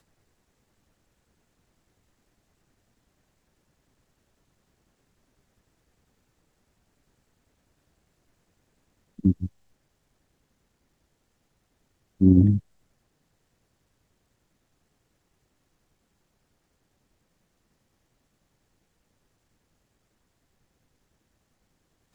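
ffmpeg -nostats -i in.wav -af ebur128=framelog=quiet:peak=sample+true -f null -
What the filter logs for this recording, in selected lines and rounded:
Integrated loudness:
  I:         -21.8 LUFS
  Threshold: -34.2 LUFS
Loudness range:
  LRA:         8.0 LU
  Threshold: -49.0 LUFS
  LRA low:   -34.4 LUFS
  LRA high:  -26.4 LUFS
Sample peak:
  Peak:       -5.9 dBFS
True peak:
  Peak:       -5.9 dBFS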